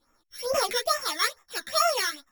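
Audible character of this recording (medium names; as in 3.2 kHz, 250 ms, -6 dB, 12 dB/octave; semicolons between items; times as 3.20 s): a buzz of ramps at a fixed pitch in blocks of 8 samples; phasing stages 12, 2.3 Hz, lowest notch 800–4200 Hz; tremolo triangle 1.7 Hz, depth 50%; a shimmering, thickened sound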